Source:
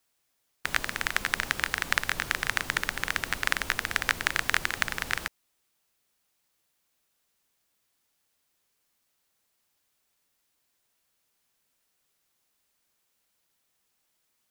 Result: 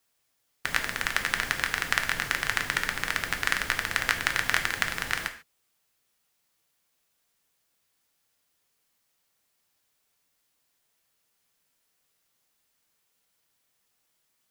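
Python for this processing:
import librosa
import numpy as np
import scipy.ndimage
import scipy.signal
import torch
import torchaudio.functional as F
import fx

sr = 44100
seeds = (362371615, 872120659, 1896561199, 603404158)

y = fx.rev_gated(x, sr, seeds[0], gate_ms=170, shape='falling', drr_db=5.5)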